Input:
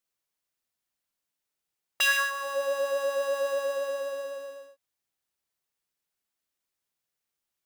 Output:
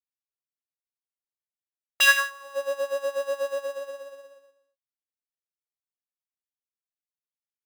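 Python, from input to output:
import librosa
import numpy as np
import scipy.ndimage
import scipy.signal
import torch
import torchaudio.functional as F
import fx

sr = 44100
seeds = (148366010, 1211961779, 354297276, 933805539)

y = fx.upward_expand(x, sr, threshold_db=-43.0, expansion=2.5)
y = y * librosa.db_to_amplitude(8.0)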